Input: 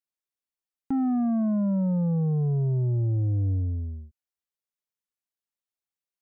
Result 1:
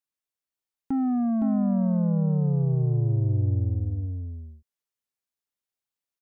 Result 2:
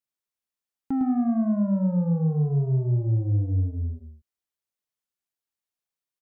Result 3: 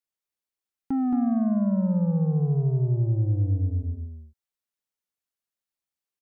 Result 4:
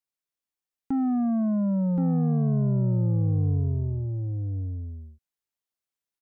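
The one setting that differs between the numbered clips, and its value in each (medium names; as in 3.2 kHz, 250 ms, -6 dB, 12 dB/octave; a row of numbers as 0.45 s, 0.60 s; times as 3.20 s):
delay, time: 514 ms, 106 ms, 222 ms, 1074 ms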